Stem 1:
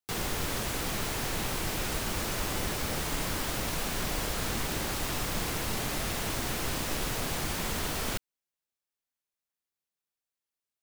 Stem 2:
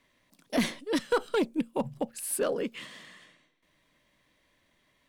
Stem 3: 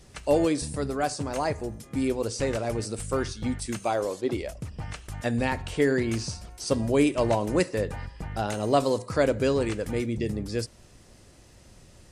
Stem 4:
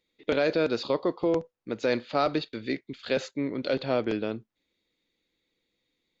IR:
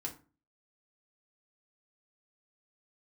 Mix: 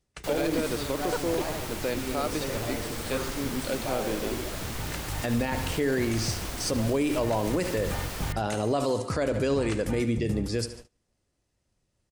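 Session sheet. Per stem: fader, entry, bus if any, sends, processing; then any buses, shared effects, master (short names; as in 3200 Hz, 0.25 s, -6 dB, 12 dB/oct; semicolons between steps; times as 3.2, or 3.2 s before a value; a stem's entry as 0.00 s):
-4.5 dB, 0.15 s, send -17.5 dB, no echo send, dry
-3.0 dB, 0.00 s, no send, no echo send, level quantiser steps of 24 dB
+3.0 dB, 0.00 s, send -20.5 dB, echo send -14.5 dB, auto duck -14 dB, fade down 0.45 s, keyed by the fourth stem
-4.0 dB, 0.00 s, no send, no echo send, dry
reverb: on, RT60 0.35 s, pre-delay 3 ms
echo: feedback echo 73 ms, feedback 56%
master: gate -42 dBFS, range -27 dB; limiter -17.5 dBFS, peak gain reduction 12 dB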